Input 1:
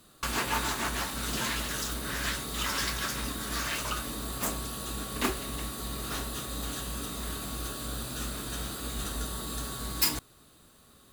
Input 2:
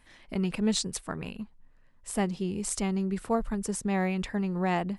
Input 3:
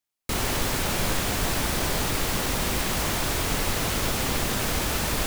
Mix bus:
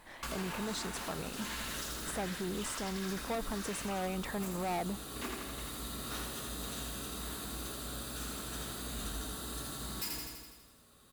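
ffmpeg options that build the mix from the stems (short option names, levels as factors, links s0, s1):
-filter_complex "[0:a]asoftclip=type=tanh:threshold=0.168,volume=0.473,asplit=2[s0][s1];[s1]volume=0.668[s2];[1:a]equalizer=f=760:t=o:w=2.3:g=12.5,asoftclip=type=tanh:threshold=0.075,volume=0.841,alimiter=level_in=1.33:limit=0.0631:level=0:latency=1,volume=0.75,volume=1[s3];[s2]aecho=0:1:82|164|246|328|410|492|574|656|738:1|0.59|0.348|0.205|0.121|0.0715|0.0422|0.0249|0.0147[s4];[s0][s3][s4]amix=inputs=3:normalize=0,alimiter=level_in=1.68:limit=0.0631:level=0:latency=1:release=410,volume=0.596"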